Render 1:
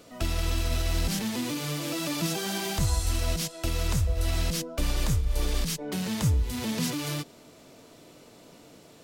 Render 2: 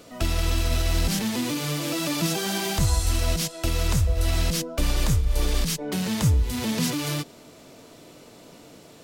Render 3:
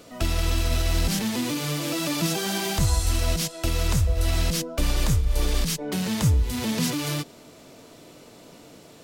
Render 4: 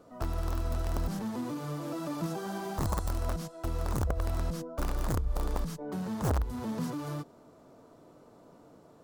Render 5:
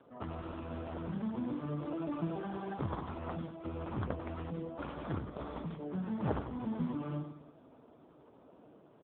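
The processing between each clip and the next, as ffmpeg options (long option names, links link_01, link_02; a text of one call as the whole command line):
ffmpeg -i in.wav -af "acontrast=26,volume=-1dB" out.wav
ffmpeg -i in.wav -af anull out.wav
ffmpeg -i in.wav -af "aeval=exprs='(mod(5.01*val(0)+1,2)-1)/5.01':channel_layout=same,highshelf=frequency=1700:width_type=q:width=1.5:gain=-11.5,volume=-8dB" out.wav
ffmpeg -i in.wav -af "aecho=1:1:94|188|282|376|470|564:0.355|0.177|0.0887|0.0444|0.0222|0.0111,volume=-1.5dB" -ar 8000 -c:a libopencore_amrnb -b:a 5150 out.amr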